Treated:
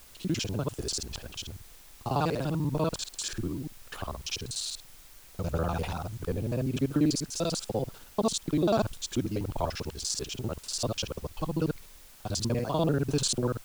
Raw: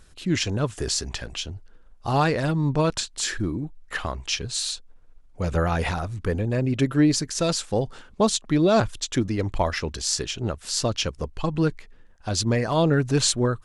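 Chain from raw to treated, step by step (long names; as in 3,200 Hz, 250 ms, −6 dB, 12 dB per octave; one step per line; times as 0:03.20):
reversed piece by piece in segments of 49 ms
parametric band 1,900 Hz −13 dB 0.42 octaves
bit-depth reduction 8 bits, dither triangular
level −6 dB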